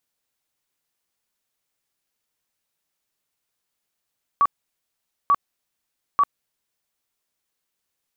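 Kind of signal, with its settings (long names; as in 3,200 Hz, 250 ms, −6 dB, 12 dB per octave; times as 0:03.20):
tone bursts 1,140 Hz, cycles 52, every 0.89 s, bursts 3, −13 dBFS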